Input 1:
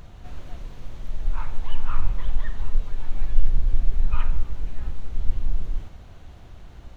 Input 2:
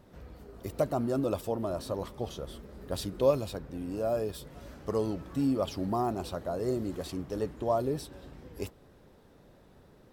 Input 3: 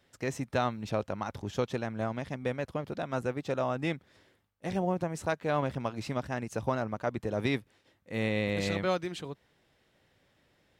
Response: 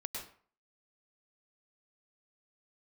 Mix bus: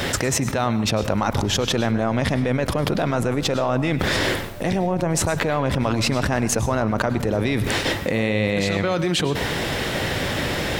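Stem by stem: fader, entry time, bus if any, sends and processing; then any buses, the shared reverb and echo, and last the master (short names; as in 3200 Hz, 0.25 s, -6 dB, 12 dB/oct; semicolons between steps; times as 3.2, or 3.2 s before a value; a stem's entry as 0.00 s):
-18.0 dB, 1.00 s, no send, infinite clipping; LPF 1500 Hz 6 dB/oct; limiter -21 dBFS, peak gain reduction 18.5 dB
-14.0 dB, 0.45 s, no send, dry
+2.0 dB, 0.00 s, send -7 dB, fast leveller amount 100%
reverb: on, RT60 0.45 s, pre-delay 96 ms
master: dry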